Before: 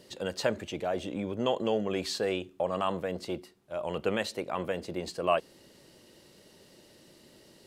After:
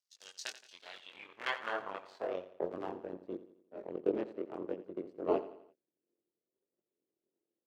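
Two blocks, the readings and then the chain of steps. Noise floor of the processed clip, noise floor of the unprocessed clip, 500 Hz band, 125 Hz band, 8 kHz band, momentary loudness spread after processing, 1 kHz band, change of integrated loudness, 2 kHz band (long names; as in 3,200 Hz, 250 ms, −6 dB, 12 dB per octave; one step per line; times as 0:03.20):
below −85 dBFS, −58 dBFS, −7.5 dB, −16.5 dB, can't be measured, 16 LU, −8.5 dB, −7.5 dB, −4.5 dB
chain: sub-harmonics by changed cycles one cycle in 3, muted
power curve on the samples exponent 2
in parallel at −2 dB: downward compressor, threshold −46 dBFS, peak gain reduction 18 dB
on the sum: multi-voice chorus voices 2, 0.57 Hz, delay 22 ms, depth 1.4 ms
band-pass filter sweep 5,900 Hz → 360 Hz, 0:00.55–0:02.73
on a send: repeating echo 86 ms, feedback 46%, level −14.5 dB
on the sum: level +13 dB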